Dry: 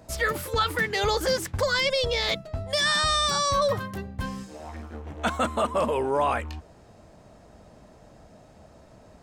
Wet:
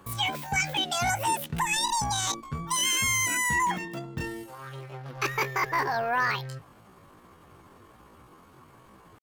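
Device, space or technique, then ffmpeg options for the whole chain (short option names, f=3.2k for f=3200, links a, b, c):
chipmunk voice: -af "asetrate=76340,aresample=44100,atempo=0.577676,volume=-2dB"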